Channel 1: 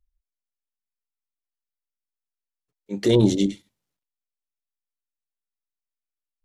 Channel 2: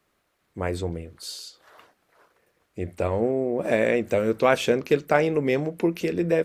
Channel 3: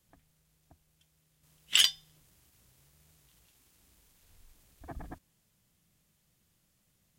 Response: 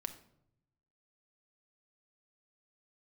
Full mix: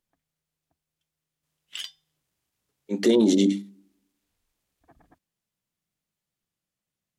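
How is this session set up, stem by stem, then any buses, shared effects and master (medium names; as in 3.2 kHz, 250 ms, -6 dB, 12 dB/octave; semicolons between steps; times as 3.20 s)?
+1.5 dB, 0.00 s, send -15.5 dB, resonant low shelf 160 Hz -11 dB, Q 3; hum notches 50/100/150/200/250/300 Hz; peak limiter -11.5 dBFS, peak gain reduction 8.5 dB
mute
-11.5 dB, 0.00 s, no send, treble shelf 7.5 kHz -6 dB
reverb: on, RT60 0.75 s, pre-delay 5 ms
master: bass shelf 120 Hz -11.5 dB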